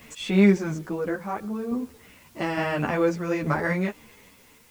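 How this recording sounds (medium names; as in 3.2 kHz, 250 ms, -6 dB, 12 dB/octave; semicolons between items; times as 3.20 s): random-step tremolo, depth 75%; a quantiser's noise floor 10-bit, dither triangular; a shimmering, thickened sound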